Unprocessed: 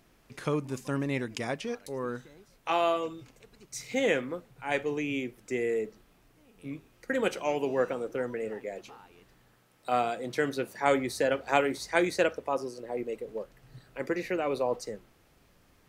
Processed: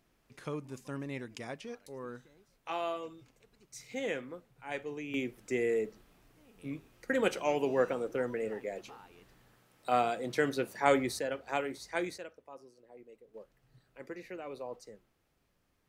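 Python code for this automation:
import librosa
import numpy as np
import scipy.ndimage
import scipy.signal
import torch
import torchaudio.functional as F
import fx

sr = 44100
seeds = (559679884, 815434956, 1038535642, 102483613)

y = fx.gain(x, sr, db=fx.steps((0.0, -9.0), (5.14, -1.0), (11.19, -8.5), (12.18, -20.0), (13.34, -13.0)))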